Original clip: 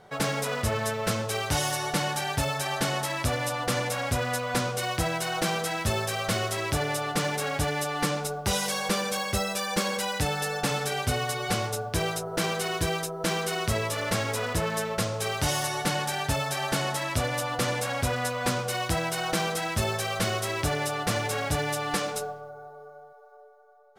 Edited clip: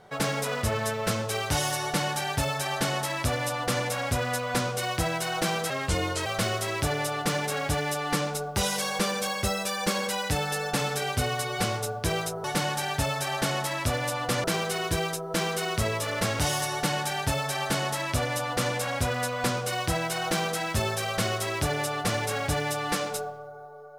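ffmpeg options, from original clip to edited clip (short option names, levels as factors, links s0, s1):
-filter_complex "[0:a]asplit=6[s0][s1][s2][s3][s4][s5];[s0]atrim=end=5.704[s6];[s1]atrim=start=5.7:end=6.16,asetpts=PTS-STARTPTS,asetrate=36162,aresample=44100,atrim=end_sample=24739,asetpts=PTS-STARTPTS[s7];[s2]atrim=start=6.156:end=12.342[s8];[s3]atrim=start=1.828:end=3.832[s9];[s4]atrim=start=12.338:end=14.292[s10];[s5]atrim=start=15.408[s11];[s6][s7]acrossfade=d=0.004:c1=hsin:c2=hsin[s12];[s12][s8]acrossfade=d=0.004:c1=hsin:c2=hsin[s13];[s13][s9]acrossfade=d=0.004:c1=hsin:c2=hsin[s14];[s14][s10]acrossfade=d=0.004:c1=hsin:c2=hsin[s15];[s15][s11]acrossfade=d=0.004:c1=hsin:c2=hsin"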